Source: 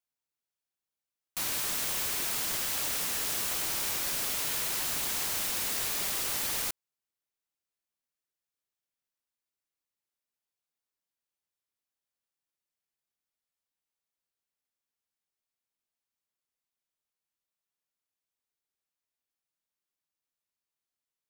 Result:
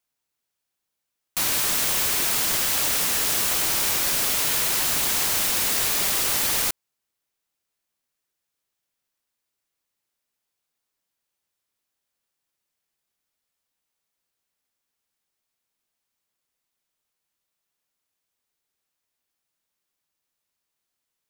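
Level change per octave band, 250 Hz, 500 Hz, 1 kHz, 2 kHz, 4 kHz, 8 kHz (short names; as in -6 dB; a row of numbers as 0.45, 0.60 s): +9.0, +9.0, +9.0, +9.0, +9.0, +9.0 dB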